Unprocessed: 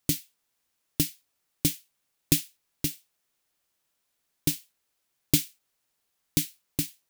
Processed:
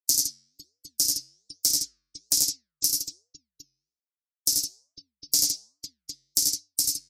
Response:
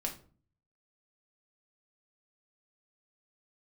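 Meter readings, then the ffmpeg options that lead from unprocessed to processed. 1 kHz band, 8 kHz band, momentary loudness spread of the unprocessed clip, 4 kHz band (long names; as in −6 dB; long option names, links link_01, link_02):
can't be measured, +9.5 dB, 13 LU, +8.5 dB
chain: -filter_complex "[0:a]acrossover=split=220|5100[link_01][link_02][link_03];[link_03]acompressor=threshold=-37dB:ratio=8[link_04];[link_01][link_02][link_04]amix=inputs=3:normalize=0,aecho=1:1:53|86|100|163|503|757:0.299|0.531|0.473|0.335|0.168|0.178,agate=range=-7dB:threshold=-58dB:ratio=16:detection=peak,aresample=32000,aresample=44100,asoftclip=type=hard:threshold=-23.5dB,afftfilt=real='re*gte(hypot(re,im),0.00631)':imag='im*gte(hypot(re,im),0.00631)':win_size=1024:overlap=0.75,flanger=delay=5:depth=6.3:regen=-90:speed=1.2:shape=sinusoidal,highshelf=frequency=4300:width_type=q:width=3:gain=8,aexciter=amount=5.5:drive=6.2:freq=3800,equalizer=frequency=180:width_type=o:width=0.75:gain=-15,volume=-5.5dB"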